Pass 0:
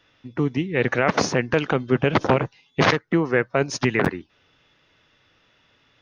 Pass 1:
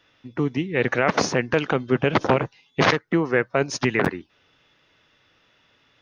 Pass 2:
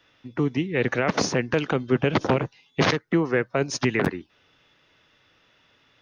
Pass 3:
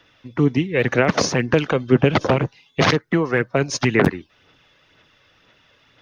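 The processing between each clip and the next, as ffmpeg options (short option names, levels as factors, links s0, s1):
-af "lowshelf=f=140:g=-4"
-filter_complex "[0:a]acrossover=split=430|3000[s0][s1][s2];[s1]acompressor=threshold=0.0282:ratio=1.5[s3];[s0][s3][s2]amix=inputs=3:normalize=0"
-af "aphaser=in_gain=1:out_gain=1:delay=1.9:decay=0.37:speed=2:type=sinusoidal,volume=1.58"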